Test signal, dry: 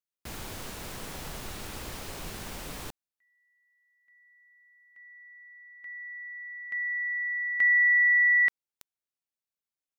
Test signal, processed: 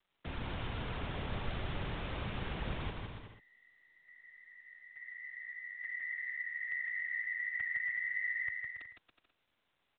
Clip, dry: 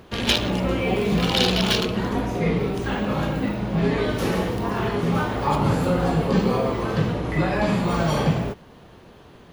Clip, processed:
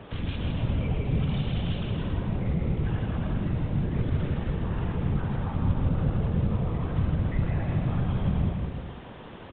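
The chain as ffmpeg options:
-filter_complex "[0:a]afftfilt=real='hypot(re,im)*cos(2*PI*random(0))':imag='hypot(re,im)*sin(2*PI*random(1))':win_size=512:overlap=0.75,asplit=2[a][b];[b]alimiter=limit=-22dB:level=0:latency=1:release=149,volume=2dB[c];[a][c]amix=inputs=2:normalize=0,acrossover=split=150[d][e];[e]acompressor=threshold=-38dB:ratio=6:attack=0.2:release=139:knee=2.83:detection=peak[f];[d][f]amix=inputs=2:normalize=0,aecho=1:1:160|280|370|437.5|488.1:0.631|0.398|0.251|0.158|0.1,volume=1.5dB" -ar 8000 -c:a pcm_mulaw

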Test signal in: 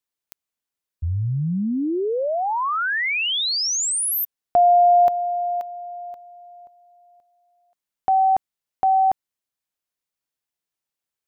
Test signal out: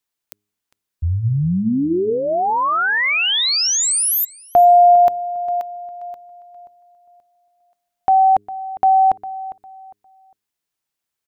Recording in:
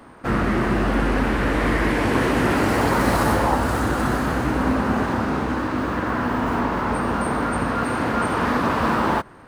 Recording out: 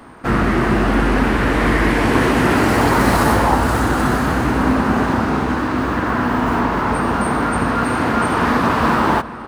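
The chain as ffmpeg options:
-filter_complex "[0:a]equalizer=f=540:t=o:w=0.25:g=-4,bandreject=f=103:t=h:w=4,bandreject=f=206:t=h:w=4,bandreject=f=309:t=h:w=4,bandreject=f=412:t=h:w=4,asplit=2[a][b];[b]adelay=404,lowpass=f=3.2k:p=1,volume=-15.5dB,asplit=2[c][d];[d]adelay=404,lowpass=f=3.2k:p=1,volume=0.27,asplit=2[e][f];[f]adelay=404,lowpass=f=3.2k:p=1,volume=0.27[g];[c][e][g]amix=inputs=3:normalize=0[h];[a][h]amix=inputs=2:normalize=0,volume=5dB"

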